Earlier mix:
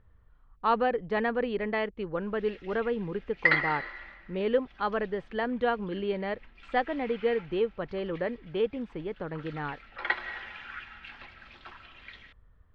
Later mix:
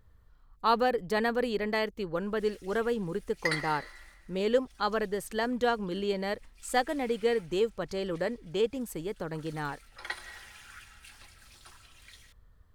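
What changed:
background -9.0 dB; master: remove LPF 3000 Hz 24 dB/oct

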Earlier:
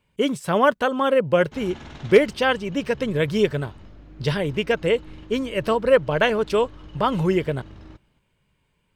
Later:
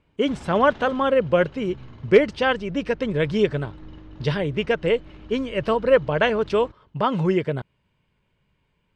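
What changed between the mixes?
background: entry -1.25 s; master: add air absorption 95 m

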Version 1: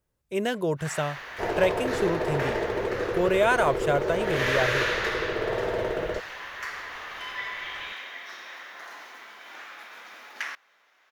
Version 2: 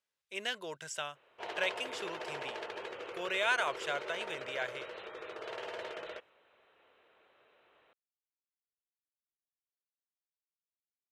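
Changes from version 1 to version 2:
first sound: muted; master: add band-pass 3400 Hz, Q 0.89

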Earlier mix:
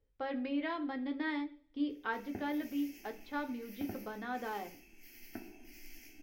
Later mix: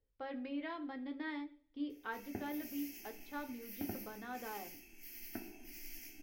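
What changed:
speech -6.0 dB; background: add high shelf 6800 Hz +8.5 dB

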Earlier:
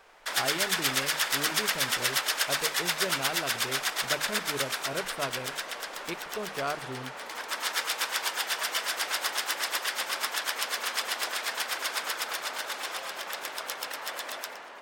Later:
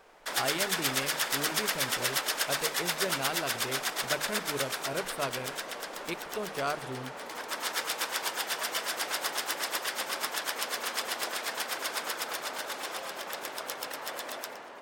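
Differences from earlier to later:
background: add tilt shelf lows +5.5 dB, about 770 Hz; master: add high shelf 4900 Hz +5 dB

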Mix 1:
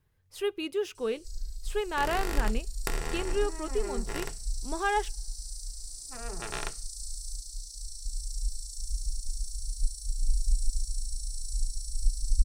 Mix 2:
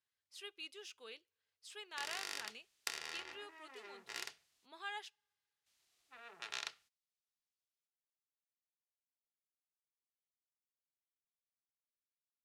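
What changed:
speech -6.0 dB; first sound: muted; master: add band-pass 4400 Hz, Q 0.92

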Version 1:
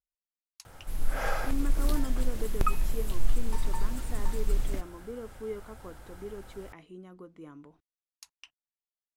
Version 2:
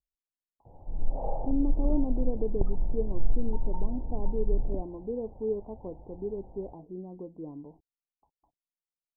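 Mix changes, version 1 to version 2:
speech +6.5 dB; master: add steep low-pass 910 Hz 72 dB/oct

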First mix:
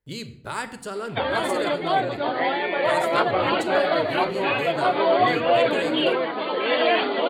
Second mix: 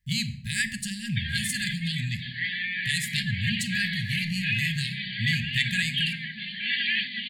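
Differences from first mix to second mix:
speech +8.5 dB; master: add brick-wall FIR band-stop 230–1600 Hz

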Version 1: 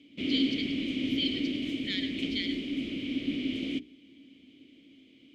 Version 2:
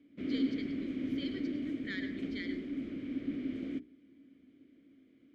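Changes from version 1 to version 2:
background -5.0 dB; master: add resonant high shelf 2100 Hz -10 dB, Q 3

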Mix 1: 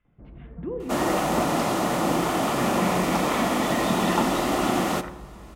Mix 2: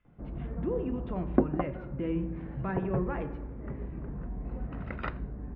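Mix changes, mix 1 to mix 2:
first sound +6.0 dB; second sound: muted

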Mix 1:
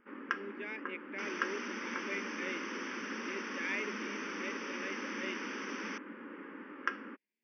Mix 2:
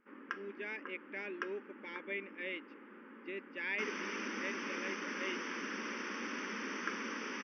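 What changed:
first sound -6.5 dB; second sound: entry +2.60 s

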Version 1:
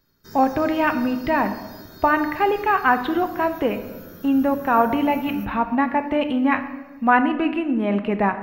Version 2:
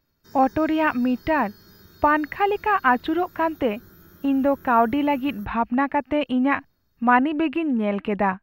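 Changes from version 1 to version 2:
background -6.0 dB; reverb: off

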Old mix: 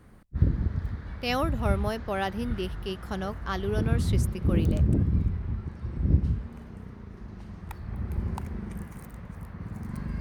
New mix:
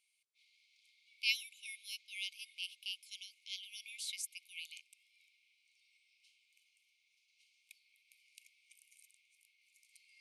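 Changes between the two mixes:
background -6.5 dB; master: add brick-wall FIR band-pass 2100–12000 Hz

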